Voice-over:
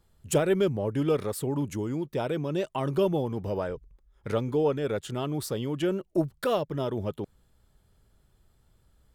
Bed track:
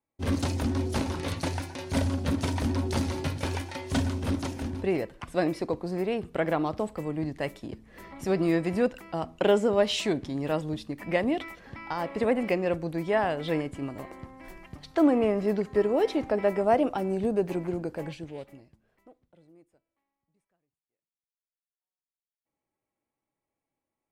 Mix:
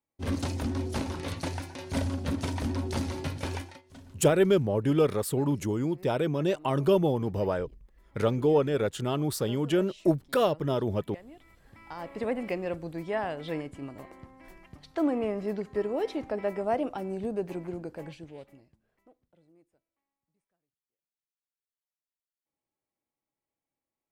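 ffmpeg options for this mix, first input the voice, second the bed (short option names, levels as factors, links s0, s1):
-filter_complex "[0:a]adelay=3900,volume=1.26[s0];[1:a]volume=5.31,afade=t=out:st=3.58:d=0.24:silence=0.1,afade=t=in:st=11.42:d=0.83:silence=0.133352[s1];[s0][s1]amix=inputs=2:normalize=0"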